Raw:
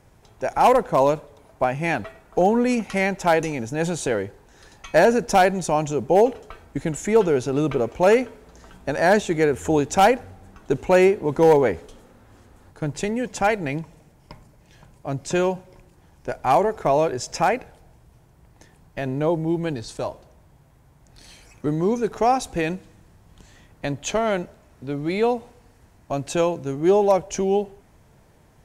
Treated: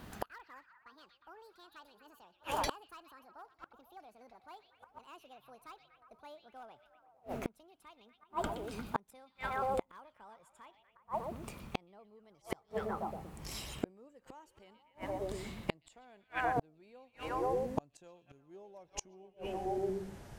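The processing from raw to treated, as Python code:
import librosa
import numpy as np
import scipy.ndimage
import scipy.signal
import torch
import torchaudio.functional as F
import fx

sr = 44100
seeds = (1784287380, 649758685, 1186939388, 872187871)

y = fx.speed_glide(x, sr, from_pct=190, to_pct=91)
y = fx.echo_stepped(y, sr, ms=120, hz=3400.0, octaves=-0.7, feedback_pct=70, wet_db=-5.0)
y = fx.gate_flip(y, sr, shuts_db=-23.0, range_db=-40)
y = y * librosa.db_to_amplitude(3.5)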